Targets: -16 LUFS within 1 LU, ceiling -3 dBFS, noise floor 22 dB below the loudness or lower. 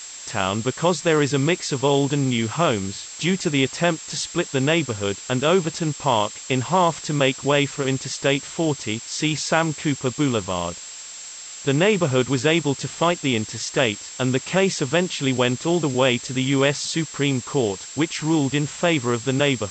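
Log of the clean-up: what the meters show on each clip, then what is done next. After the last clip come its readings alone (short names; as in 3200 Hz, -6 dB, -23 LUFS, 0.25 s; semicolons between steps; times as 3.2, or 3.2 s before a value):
steady tone 7500 Hz; tone level -37 dBFS; noise floor -38 dBFS; noise floor target -44 dBFS; loudness -22.0 LUFS; peak -5.0 dBFS; loudness target -16.0 LUFS
-> notch 7500 Hz, Q 30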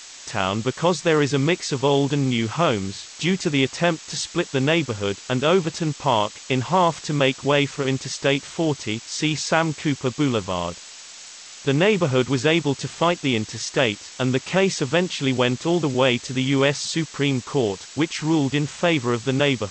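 steady tone none; noise floor -41 dBFS; noise floor target -44 dBFS
-> denoiser 6 dB, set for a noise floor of -41 dBFS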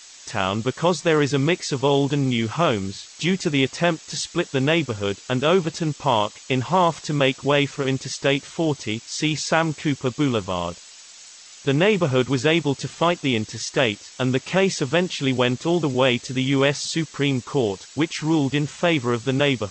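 noise floor -45 dBFS; loudness -22.0 LUFS; peak -5.0 dBFS; loudness target -16.0 LUFS
-> gain +6 dB; limiter -3 dBFS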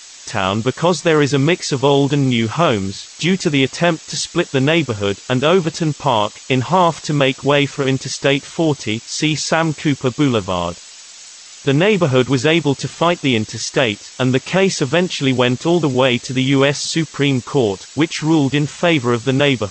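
loudness -16.5 LUFS; peak -3.0 dBFS; noise floor -39 dBFS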